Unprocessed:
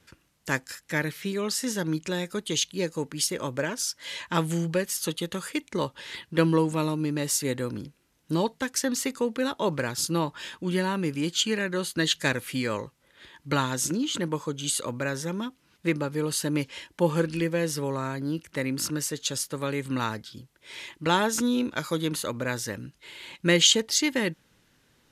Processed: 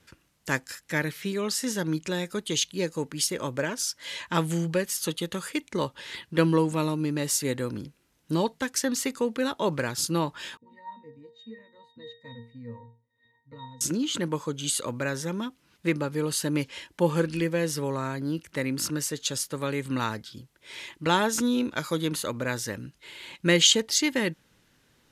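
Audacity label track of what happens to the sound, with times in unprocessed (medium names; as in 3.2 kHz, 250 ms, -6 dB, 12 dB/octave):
10.570000	13.810000	pitch-class resonator A#, decay 0.36 s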